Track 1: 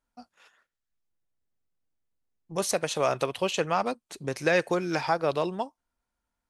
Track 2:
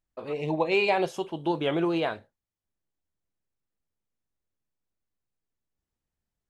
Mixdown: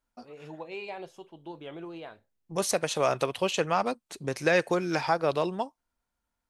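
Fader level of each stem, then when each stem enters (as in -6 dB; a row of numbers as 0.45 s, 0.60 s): 0.0 dB, -15.0 dB; 0.00 s, 0.00 s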